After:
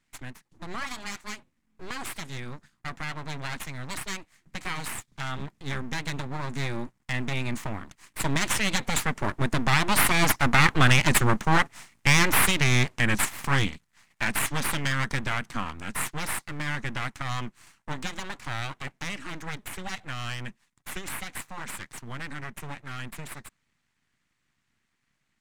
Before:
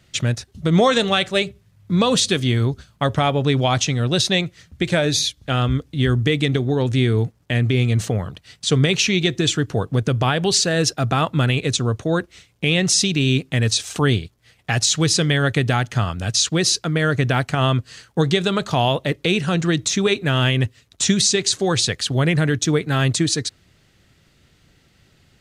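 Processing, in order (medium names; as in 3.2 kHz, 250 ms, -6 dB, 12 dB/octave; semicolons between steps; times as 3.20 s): Doppler pass-by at 11.17 s, 19 m/s, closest 23 m; full-wave rectifier; ten-band graphic EQ 125 Hz +7 dB, 250 Hz +3 dB, 500 Hz -5 dB, 1 kHz +7 dB, 2 kHz +9 dB, 8 kHz +7 dB; trim -1.5 dB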